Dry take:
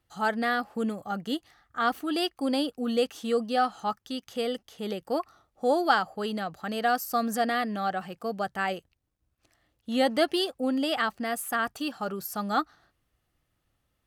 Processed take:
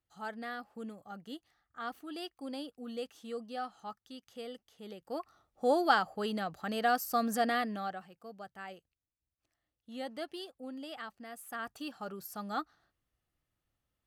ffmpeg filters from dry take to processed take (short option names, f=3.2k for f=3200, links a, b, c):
-af "volume=3.5dB,afade=t=in:st=4.98:d=0.7:silence=0.298538,afade=t=out:st=7.55:d=0.53:silence=0.223872,afade=t=in:st=11.34:d=0.48:silence=0.446684"